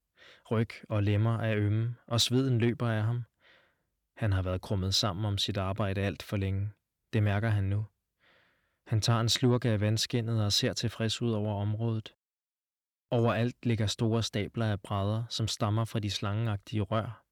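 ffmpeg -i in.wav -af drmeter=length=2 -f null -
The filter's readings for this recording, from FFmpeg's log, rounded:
Channel 1: DR: 8.8
Overall DR: 8.8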